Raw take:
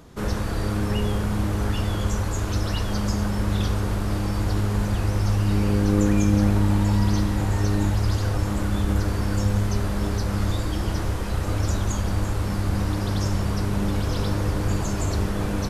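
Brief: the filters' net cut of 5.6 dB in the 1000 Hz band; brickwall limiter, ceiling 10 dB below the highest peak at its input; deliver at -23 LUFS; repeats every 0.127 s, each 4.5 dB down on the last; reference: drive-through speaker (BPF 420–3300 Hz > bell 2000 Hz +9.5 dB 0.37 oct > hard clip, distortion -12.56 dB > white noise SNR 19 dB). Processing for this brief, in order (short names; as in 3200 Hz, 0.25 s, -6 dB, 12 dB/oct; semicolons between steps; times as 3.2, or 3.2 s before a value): bell 1000 Hz -7.5 dB; limiter -17.5 dBFS; BPF 420–3300 Hz; bell 2000 Hz +9.5 dB 0.37 oct; feedback echo 0.127 s, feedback 60%, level -4.5 dB; hard clip -32 dBFS; white noise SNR 19 dB; gain +13 dB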